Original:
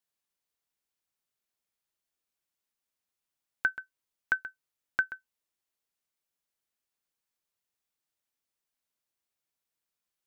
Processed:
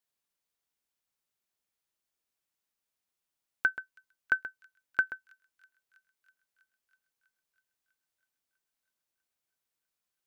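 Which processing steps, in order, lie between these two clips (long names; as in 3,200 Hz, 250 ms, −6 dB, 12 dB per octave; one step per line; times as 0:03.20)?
dynamic equaliser 440 Hz, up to +6 dB, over −46 dBFS, Q 0.75
on a send: delay with a high-pass on its return 324 ms, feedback 74%, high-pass 3,700 Hz, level −18 dB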